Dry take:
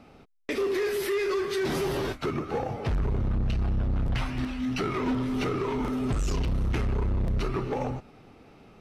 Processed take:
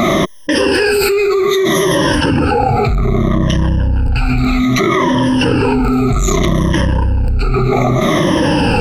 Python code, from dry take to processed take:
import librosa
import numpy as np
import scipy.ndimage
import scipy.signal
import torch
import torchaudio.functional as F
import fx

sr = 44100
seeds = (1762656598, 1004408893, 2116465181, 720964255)

y = fx.spec_ripple(x, sr, per_octave=1.2, drift_hz=-0.63, depth_db=23)
y = fx.notch(y, sr, hz=440.0, q=12.0)
y = fx.env_flatten(y, sr, amount_pct=100)
y = F.gain(torch.from_numpy(y), 3.0).numpy()